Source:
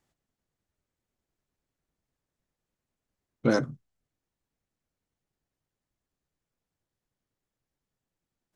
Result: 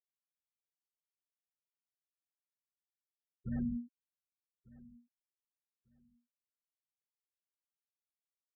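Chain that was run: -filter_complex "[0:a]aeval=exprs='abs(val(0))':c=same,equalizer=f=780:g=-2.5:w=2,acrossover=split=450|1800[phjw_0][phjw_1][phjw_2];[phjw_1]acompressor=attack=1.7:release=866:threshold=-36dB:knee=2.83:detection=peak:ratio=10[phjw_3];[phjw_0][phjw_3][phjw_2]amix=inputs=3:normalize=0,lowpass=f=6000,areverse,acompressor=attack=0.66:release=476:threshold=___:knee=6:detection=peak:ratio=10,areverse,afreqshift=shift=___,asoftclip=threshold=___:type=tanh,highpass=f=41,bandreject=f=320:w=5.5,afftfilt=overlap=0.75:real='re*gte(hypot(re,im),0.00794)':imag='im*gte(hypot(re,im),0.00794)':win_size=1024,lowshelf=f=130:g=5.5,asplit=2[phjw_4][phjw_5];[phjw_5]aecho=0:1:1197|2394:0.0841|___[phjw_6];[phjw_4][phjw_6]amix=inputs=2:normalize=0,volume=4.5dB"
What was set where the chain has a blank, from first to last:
-34dB, -240, -32.5dB, 0.0177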